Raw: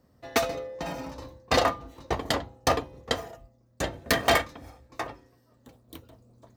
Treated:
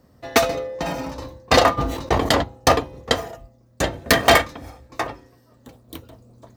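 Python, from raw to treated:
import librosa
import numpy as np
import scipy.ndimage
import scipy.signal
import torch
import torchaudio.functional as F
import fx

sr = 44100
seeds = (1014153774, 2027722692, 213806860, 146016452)

y = fx.sustainer(x, sr, db_per_s=54.0, at=(1.77, 2.42), fade=0.02)
y = y * 10.0 ** (8.0 / 20.0)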